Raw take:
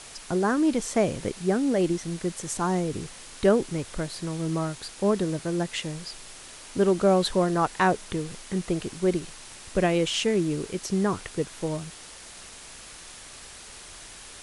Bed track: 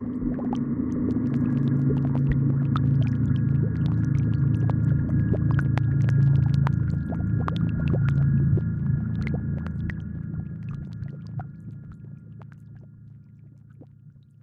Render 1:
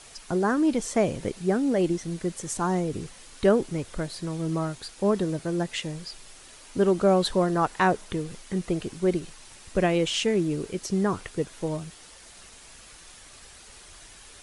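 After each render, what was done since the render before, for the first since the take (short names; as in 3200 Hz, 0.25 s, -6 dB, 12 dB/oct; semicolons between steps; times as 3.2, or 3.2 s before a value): denoiser 6 dB, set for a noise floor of -45 dBFS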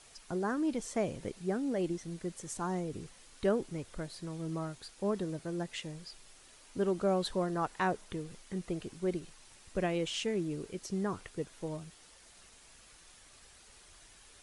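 gain -9.5 dB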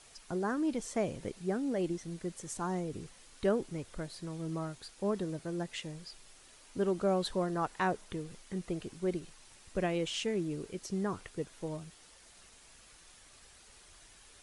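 nothing audible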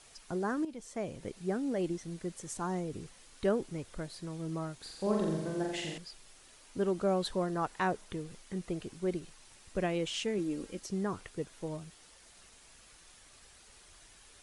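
0.65–1.47 fade in, from -12.5 dB; 4.76–5.98 flutter echo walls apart 7.4 m, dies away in 1 s; 10.38–10.8 comb 3.7 ms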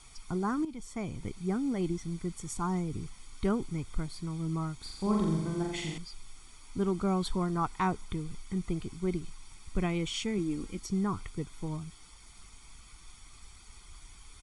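low shelf 84 Hz +11.5 dB; comb 0.9 ms, depth 70%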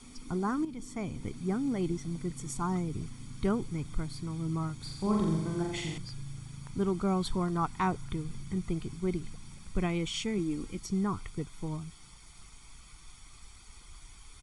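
add bed track -24 dB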